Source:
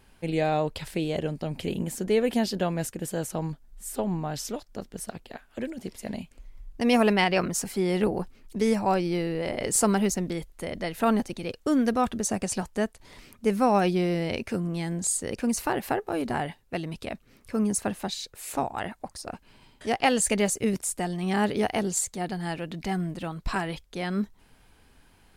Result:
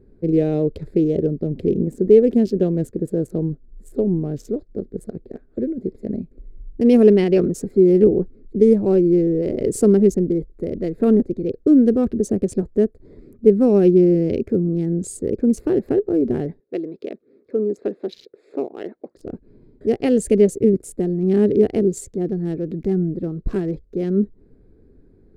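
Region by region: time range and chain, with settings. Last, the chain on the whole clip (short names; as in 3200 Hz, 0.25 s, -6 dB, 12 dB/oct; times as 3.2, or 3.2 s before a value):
16.6–19.17 Chebyshev band-pass 390–3700 Hz + high shelf 2200 Hz +4.5 dB
whole clip: Wiener smoothing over 15 samples; resonant low shelf 600 Hz +13.5 dB, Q 3; gain -6.5 dB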